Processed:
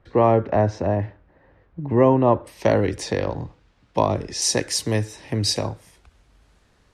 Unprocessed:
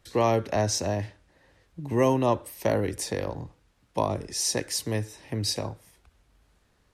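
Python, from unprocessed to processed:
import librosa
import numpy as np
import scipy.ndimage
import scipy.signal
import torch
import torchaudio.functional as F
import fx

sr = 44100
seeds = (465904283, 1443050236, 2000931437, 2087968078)

y = fx.lowpass(x, sr, hz=fx.steps((0.0, 1500.0), (2.47, 5000.0), (4.42, 9300.0)), slope=12)
y = F.gain(torch.from_numpy(y), 6.5).numpy()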